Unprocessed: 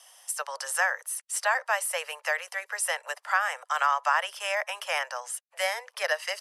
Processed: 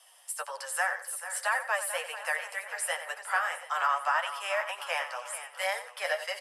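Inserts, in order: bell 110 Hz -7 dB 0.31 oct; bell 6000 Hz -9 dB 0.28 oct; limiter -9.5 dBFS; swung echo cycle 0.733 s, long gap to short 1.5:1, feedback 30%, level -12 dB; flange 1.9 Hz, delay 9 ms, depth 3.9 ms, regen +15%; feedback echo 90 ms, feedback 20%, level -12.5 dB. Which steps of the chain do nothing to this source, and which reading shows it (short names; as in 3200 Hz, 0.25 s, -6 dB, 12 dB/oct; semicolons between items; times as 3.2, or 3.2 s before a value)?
bell 110 Hz: input band starts at 400 Hz; limiter -9.5 dBFS: input peak -12.0 dBFS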